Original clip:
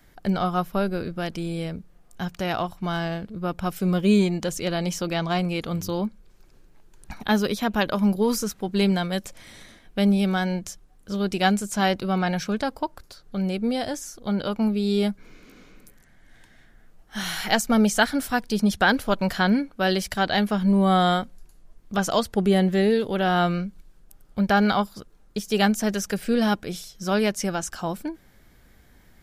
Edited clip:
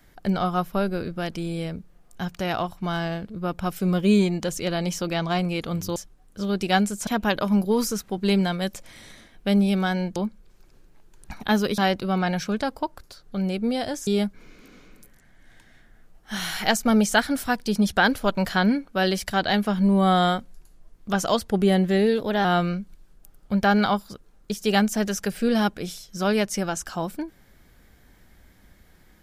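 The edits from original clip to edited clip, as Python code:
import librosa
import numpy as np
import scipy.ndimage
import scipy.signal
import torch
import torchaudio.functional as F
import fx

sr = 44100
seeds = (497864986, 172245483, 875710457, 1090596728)

y = fx.edit(x, sr, fx.swap(start_s=5.96, length_s=1.62, other_s=10.67, other_length_s=1.11),
    fx.cut(start_s=14.07, length_s=0.84),
    fx.speed_span(start_s=23.03, length_s=0.28, speed=1.09), tone=tone)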